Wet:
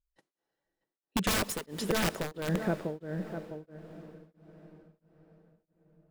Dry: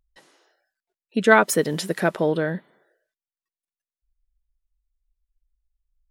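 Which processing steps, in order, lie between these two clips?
filtered feedback delay 648 ms, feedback 16%, low-pass 2.3 kHz, level -9 dB; gate -47 dBFS, range -28 dB; in parallel at +1.5 dB: gain riding within 3 dB 0.5 s; 1.36–2.48 s: on the sum: peaking EQ 87 Hz -11.5 dB 3 oct; integer overflow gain 9 dB; compression 2:1, threshold -42 dBFS, peak gain reduction 15.5 dB; bass shelf 450 Hz +9.5 dB; on a send at -14 dB: reverberation RT60 6.0 s, pre-delay 120 ms; on the sum: tremolo of two beating tones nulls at 1.5 Hz

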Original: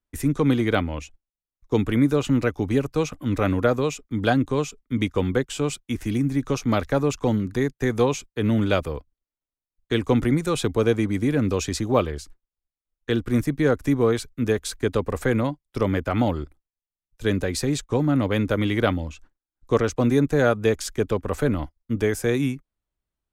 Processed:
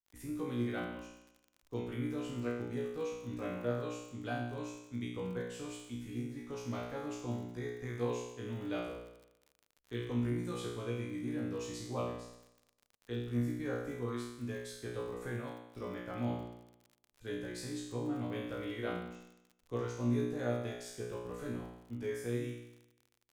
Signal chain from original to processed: feedback comb 60 Hz, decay 0.85 s, harmonics all, mix 100%; crackle 52 per s -44 dBFS; trim -4.5 dB

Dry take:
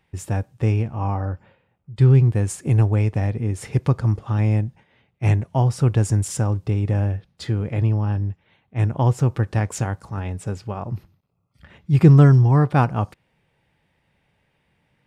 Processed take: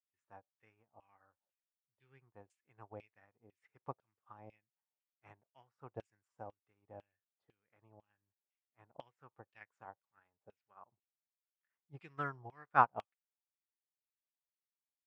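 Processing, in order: LFO band-pass saw down 2 Hz 610–3000 Hz; upward expansion 2.5:1, over -48 dBFS; trim +1 dB

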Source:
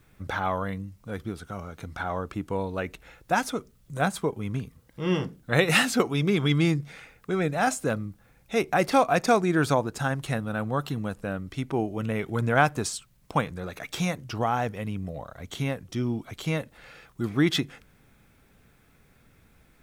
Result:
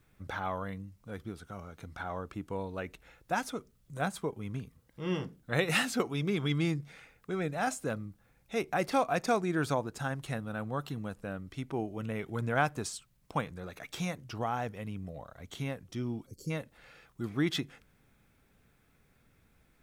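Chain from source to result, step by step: time-frequency box 16.26–16.50 s, 580–4200 Hz -26 dB; trim -7.5 dB

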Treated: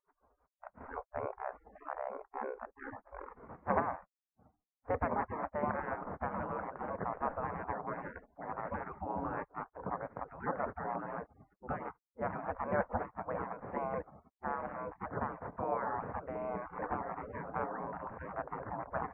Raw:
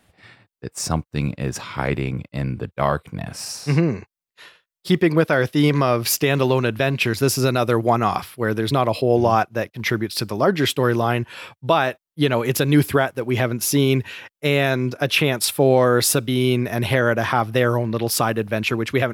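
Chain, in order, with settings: spectral gate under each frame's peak -25 dB weak; Gaussian low-pass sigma 8.3 samples; peaking EQ 350 Hz -8 dB 0.29 oct; trim +12 dB

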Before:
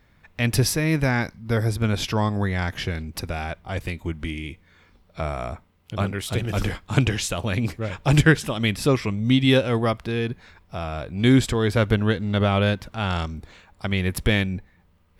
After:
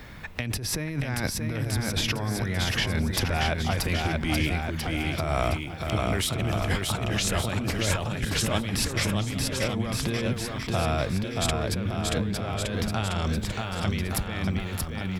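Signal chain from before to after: compressor with a negative ratio -30 dBFS, ratio -1; bouncing-ball echo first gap 630 ms, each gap 0.85×, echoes 5; three bands compressed up and down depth 40%

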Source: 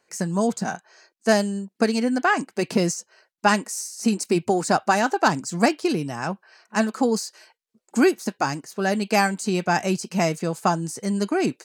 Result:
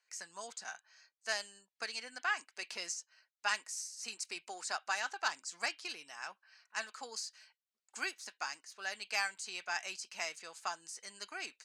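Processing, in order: Bessel high-pass 2.2 kHz, order 2; distance through air 62 m; trim -5.5 dB

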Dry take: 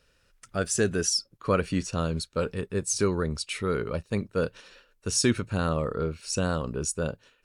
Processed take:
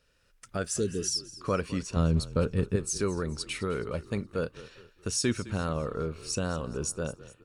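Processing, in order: recorder AGC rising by 9.4 dB/s; 0.74–1.02 s: spectral replace 530–3200 Hz; 1.96–2.76 s: bass shelf 290 Hz +11.5 dB; frequency-shifting echo 210 ms, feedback 44%, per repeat -34 Hz, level -17 dB; trim -4.5 dB

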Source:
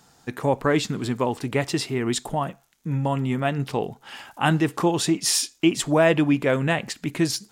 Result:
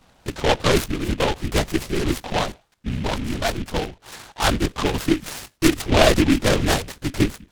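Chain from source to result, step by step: 2.90–5.08 s: harmonic-percussive split harmonic -5 dB; LPC vocoder at 8 kHz whisper; delay time shaken by noise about 2.2 kHz, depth 0.12 ms; trim +3 dB

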